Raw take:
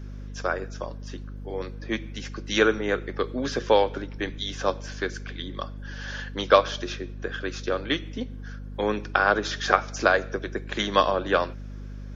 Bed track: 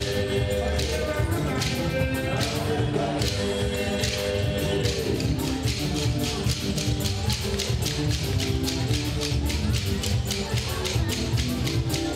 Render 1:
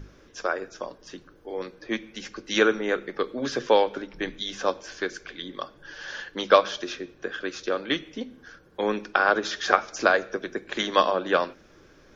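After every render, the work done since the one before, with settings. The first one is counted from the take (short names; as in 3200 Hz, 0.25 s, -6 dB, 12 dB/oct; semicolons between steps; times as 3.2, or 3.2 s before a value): notches 50/100/150/200/250 Hz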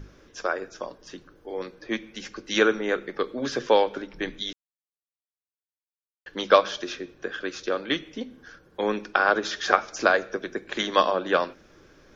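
4.53–6.26 mute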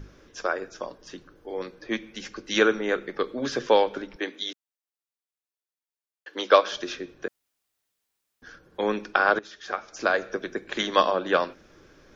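4.16–6.72 HPF 270 Hz 24 dB/oct; 7.28–8.42 room tone; 9.39–10.28 fade in quadratic, from -15 dB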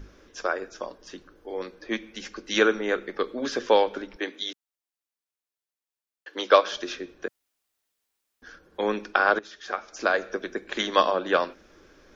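bell 130 Hz -12 dB 0.51 oct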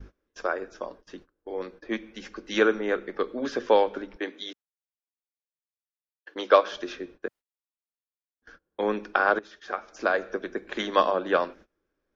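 gate -46 dBFS, range -24 dB; high shelf 3100 Hz -10 dB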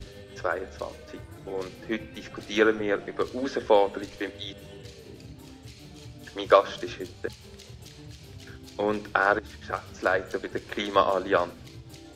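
add bed track -20 dB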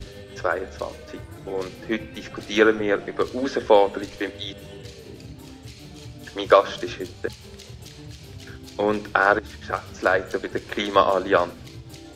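gain +4.5 dB; limiter -2 dBFS, peak gain reduction 2 dB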